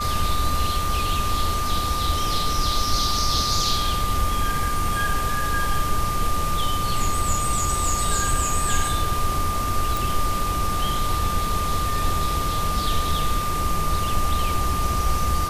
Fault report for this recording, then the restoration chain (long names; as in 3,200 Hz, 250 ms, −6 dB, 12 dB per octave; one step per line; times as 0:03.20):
whistle 1,200 Hz −25 dBFS
0:09.97: click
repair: click removal
notch filter 1,200 Hz, Q 30